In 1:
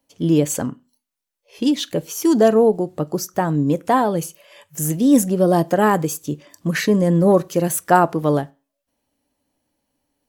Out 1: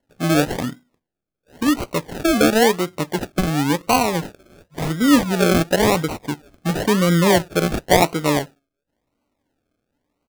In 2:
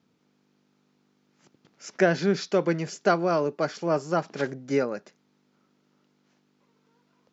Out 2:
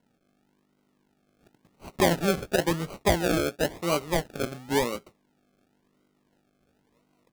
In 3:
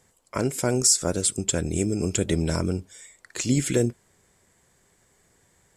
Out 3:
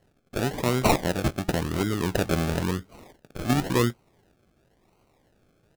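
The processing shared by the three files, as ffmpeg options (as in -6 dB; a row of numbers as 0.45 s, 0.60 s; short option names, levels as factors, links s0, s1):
-filter_complex "[0:a]asplit=2[s0][s1];[s1]adelay=17,volume=0.2[s2];[s0][s2]amix=inputs=2:normalize=0,acrusher=samples=36:mix=1:aa=0.000001:lfo=1:lforange=21.6:lforate=0.95,volume=0.891"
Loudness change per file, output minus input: -0.5 LU, -1.0 LU, -2.0 LU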